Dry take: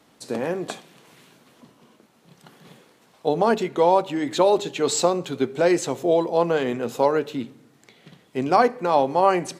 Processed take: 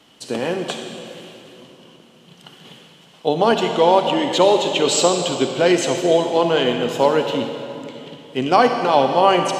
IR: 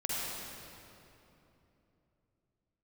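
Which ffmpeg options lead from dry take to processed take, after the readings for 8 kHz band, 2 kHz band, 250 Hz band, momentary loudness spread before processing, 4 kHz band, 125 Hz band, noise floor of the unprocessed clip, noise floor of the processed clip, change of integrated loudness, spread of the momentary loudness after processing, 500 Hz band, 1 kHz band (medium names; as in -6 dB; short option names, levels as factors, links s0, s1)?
+5.5 dB, +6.0 dB, +4.0 dB, 12 LU, +11.5 dB, +4.0 dB, -58 dBFS, -49 dBFS, +4.0 dB, 15 LU, +4.0 dB, +4.0 dB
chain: -filter_complex "[0:a]equalizer=f=3000:w=4.9:g=13.5,asplit=2[s0][s1];[1:a]atrim=start_sample=2205,lowpass=8000,highshelf=f=3600:g=10.5[s2];[s1][s2]afir=irnorm=-1:irlink=0,volume=0.316[s3];[s0][s3]amix=inputs=2:normalize=0,volume=1.12"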